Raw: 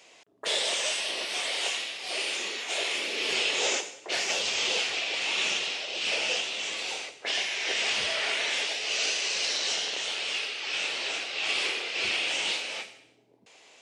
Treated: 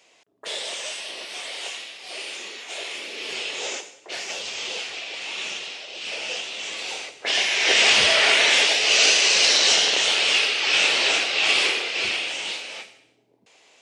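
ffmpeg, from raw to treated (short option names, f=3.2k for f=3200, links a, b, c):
-af "volume=11.5dB,afade=t=in:st=6.12:d=1.02:silence=0.473151,afade=t=in:st=7.14:d=0.64:silence=0.398107,afade=t=out:st=11.1:d=1.24:silence=0.251189"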